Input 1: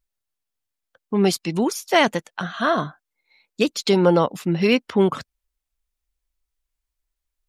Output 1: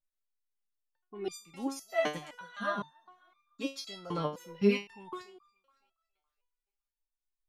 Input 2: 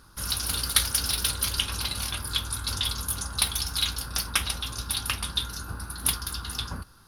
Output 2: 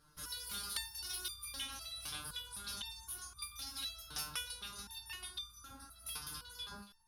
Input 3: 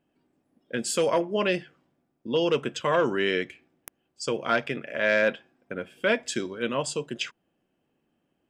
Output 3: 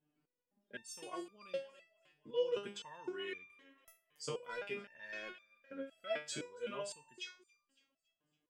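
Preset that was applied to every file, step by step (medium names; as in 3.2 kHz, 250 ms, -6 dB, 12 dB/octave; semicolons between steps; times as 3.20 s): thinning echo 280 ms, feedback 41%, high-pass 390 Hz, level -20 dB; resonator arpeggio 3.9 Hz 150–1200 Hz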